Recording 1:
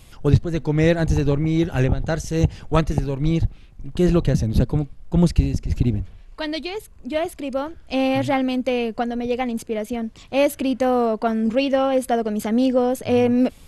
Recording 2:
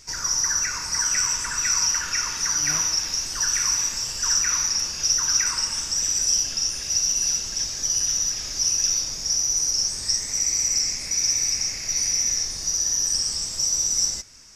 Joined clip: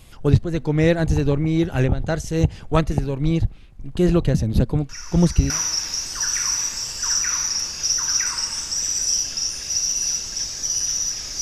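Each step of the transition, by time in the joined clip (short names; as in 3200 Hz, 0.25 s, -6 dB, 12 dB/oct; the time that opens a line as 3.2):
recording 1
4.89 add recording 2 from 2.09 s 0.61 s -12 dB
5.5 switch to recording 2 from 2.7 s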